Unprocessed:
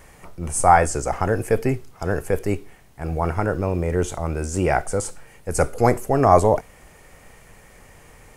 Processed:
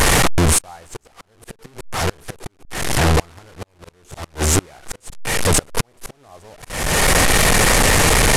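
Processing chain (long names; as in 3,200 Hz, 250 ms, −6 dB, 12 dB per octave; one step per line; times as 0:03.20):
linear delta modulator 64 kbit/s, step −12.5 dBFS
gate with flip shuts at −10 dBFS, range −31 dB
volume swells 435 ms
level +5.5 dB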